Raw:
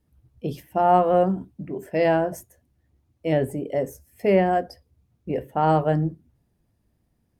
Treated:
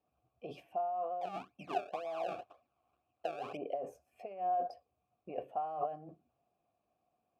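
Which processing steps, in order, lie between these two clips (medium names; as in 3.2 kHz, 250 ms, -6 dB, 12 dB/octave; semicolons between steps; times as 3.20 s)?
compressor with a negative ratio -29 dBFS, ratio -1; 1.21–3.57 s: decimation with a swept rate 30×, swing 100% 2 Hz; vowel filter a; trim +1 dB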